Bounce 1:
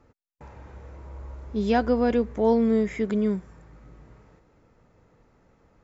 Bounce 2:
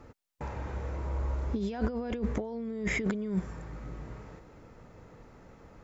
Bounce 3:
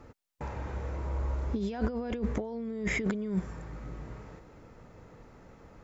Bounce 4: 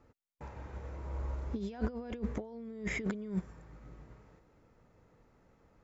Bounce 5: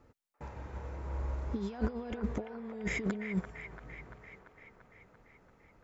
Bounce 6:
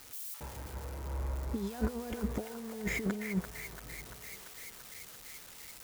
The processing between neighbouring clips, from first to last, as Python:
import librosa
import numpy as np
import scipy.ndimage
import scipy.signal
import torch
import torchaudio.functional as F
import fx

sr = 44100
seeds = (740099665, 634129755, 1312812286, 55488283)

y1 = fx.over_compress(x, sr, threshold_db=-32.0, ratio=-1.0)
y2 = y1
y3 = fx.upward_expand(y2, sr, threshold_db=-44.0, expansion=1.5)
y3 = F.gain(torch.from_numpy(y3), -3.0).numpy()
y4 = fx.echo_wet_bandpass(y3, sr, ms=341, feedback_pct=67, hz=1300.0, wet_db=-5.5)
y4 = F.gain(torch.from_numpy(y4), 1.5).numpy()
y5 = y4 + 0.5 * 10.0 ** (-36.0 / 20.0) * np.diff(np.sign(y4), prepend=np.sign(y4[:1]))